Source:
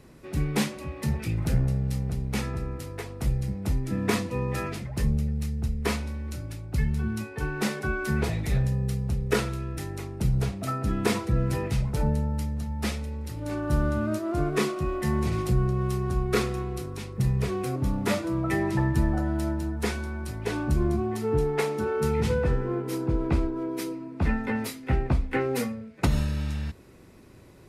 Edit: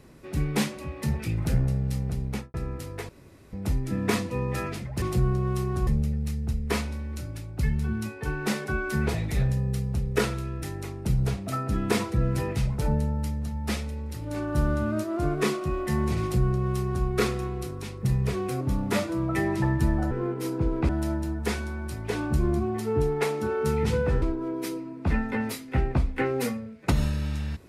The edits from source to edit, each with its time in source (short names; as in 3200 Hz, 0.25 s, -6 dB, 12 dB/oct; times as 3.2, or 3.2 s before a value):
2.26–2.54 studio fade out
3.09–3.53 room tone
15.36–16.21 copy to 5.02
22.59–23.37 move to 19.26